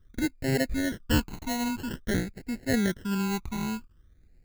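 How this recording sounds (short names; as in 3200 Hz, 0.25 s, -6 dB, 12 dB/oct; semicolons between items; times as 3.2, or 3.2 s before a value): aliases and images of a low sample rate 1200 Hz, jitter 0%; phasing stages 12, 0.5 Hz, lowest notch 540–1100 Hz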